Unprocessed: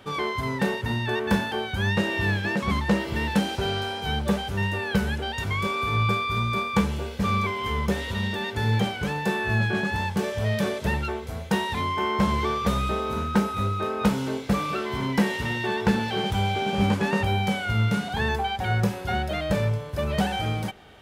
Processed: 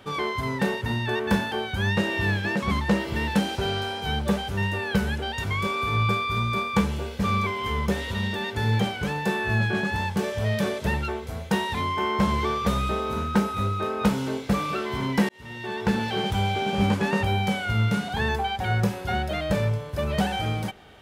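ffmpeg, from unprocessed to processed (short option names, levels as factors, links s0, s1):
-filter_complex "[0:a]asplit=2[s0][s1];[s0]atrim=end=15.29,asetpts=PTS-STARTPTS,afade=t=out:st=15.286:d=0.004:c=hsin[s2];[s1]atrim=start=15.29,asetpts=PTS-STARTPTS,afade=t=in:d=0.75[s3];[s2][s3]concat=n=2:v=0:a=1"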